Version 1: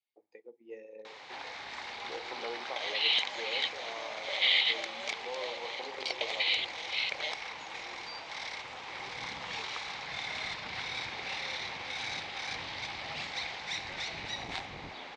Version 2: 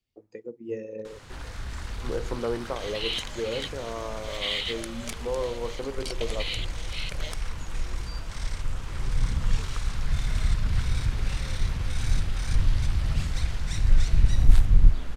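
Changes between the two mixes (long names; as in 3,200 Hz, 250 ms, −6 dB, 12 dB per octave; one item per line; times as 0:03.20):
speech +9.5 dB
master: remove loudspeaker in its box 460–5,500 Hz, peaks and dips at 810 Hz +9 dB, 1,400 Hz −5 dB, 2,200 Hz +8 dB, 3,800 Hz +5 dB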